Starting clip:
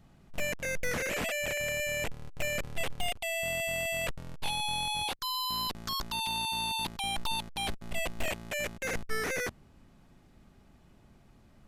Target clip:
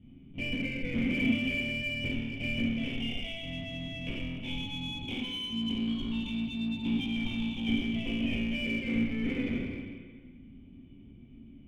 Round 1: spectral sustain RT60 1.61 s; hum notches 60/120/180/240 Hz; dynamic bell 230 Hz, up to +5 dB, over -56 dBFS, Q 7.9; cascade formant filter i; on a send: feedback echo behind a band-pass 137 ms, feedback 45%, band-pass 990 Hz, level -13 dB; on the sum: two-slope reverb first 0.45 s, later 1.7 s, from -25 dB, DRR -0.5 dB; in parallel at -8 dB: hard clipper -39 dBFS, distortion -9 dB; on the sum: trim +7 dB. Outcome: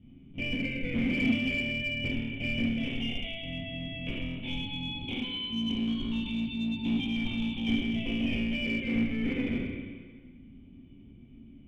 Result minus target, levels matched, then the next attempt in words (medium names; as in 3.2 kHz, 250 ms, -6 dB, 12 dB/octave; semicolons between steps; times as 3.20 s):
hard clipper: distortion -5 dB
spectral sustain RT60 1.61 s; hum notches 60/120/180/240 Hz; dynamic bell 230 Hz, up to +5 dB, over -56 dBFS, Q 7.9; cascade formant filter i; on a send: feedback echo behind a band-pass 137 ms, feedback 45%, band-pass 990 Hz, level -13 dB; on the sum: two-slope reverb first 0.45 s, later 1.7 s, from -25 dB, DRR -0.5 dB; in parallel at -8 dB: hard clipper -48.5 dBFS, distortion -4 dB; on the sum: trim +7 dB